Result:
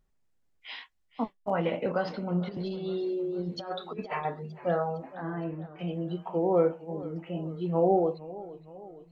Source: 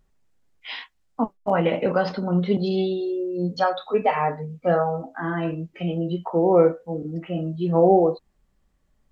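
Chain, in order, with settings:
0:02.47–0:04.25: compressor whose output falls as the input rises −25 dBFS, ratio −0.5
0:05.15–0:05.79: low-pass filter 1,000 Hz 6 dB per octave
feedback echo with a swinging delay time 461 ms, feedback 55%, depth 110 cents, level −17.5 dB
level −7.5 dB

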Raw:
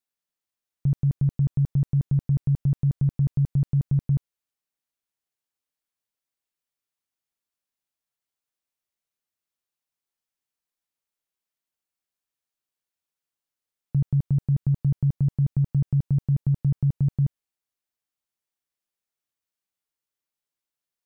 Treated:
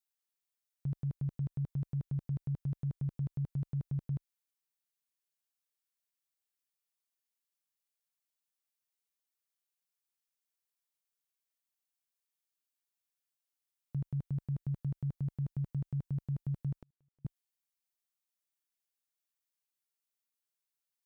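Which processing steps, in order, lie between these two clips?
spectral tilt +2 dB per octave
0:16.75–0:17.25: gate with flip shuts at −36 dBFS, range −42 dB
level −7.5 dB

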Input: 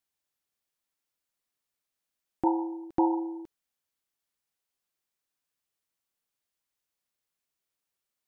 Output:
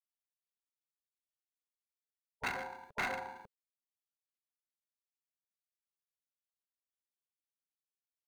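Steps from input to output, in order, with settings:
running median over 41 samples
gate on every frequency bin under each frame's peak −20 dB weak
level +5.5 dB

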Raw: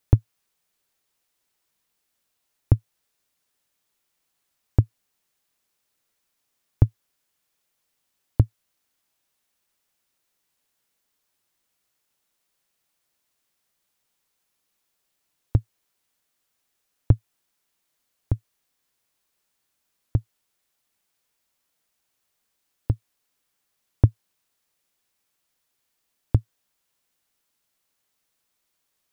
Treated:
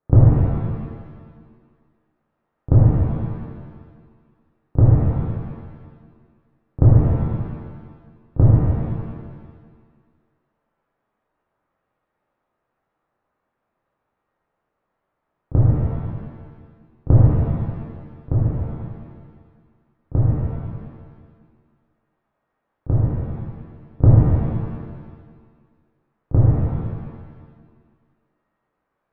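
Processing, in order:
low-pass filter 1,300 Hz 24 dB per octave
mains-hum notches 50/100 Hz
backwards echo 33 ms −17.5 dB
reverb with rising layers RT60 1.6 s, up +7 semitones, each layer −8 dB, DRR −9 dB
level +2 dB

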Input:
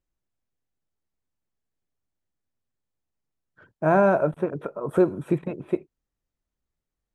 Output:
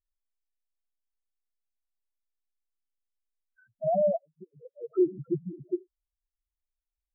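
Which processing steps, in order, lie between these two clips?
0:04.16–0:04.91: gate with flip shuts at −19 dBFS, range −38 dB
spectral peaks only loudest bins 2
level −2 dB

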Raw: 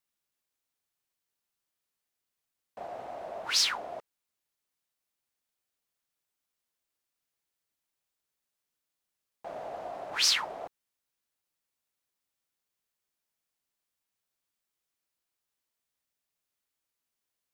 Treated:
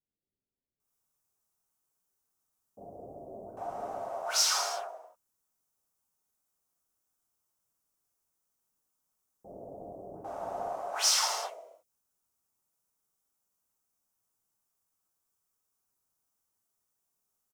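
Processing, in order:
flat-topped bell 2,800 Hz −11.5 dB
multiband delay without the direct sound lows, highs 800 ms, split 500 Hz
reverb whose tail is shaped and stops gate 370 ms falling, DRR −4 dB
gain on a spectral selection 0:11.49–0:11.90, 680–1,900 Hz −12 dB

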